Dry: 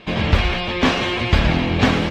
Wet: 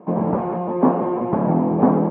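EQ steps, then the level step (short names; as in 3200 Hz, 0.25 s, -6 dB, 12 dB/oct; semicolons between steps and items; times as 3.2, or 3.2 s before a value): elliptic band-pass 170–970 Hz, stop band 80 dB; +3.5 dB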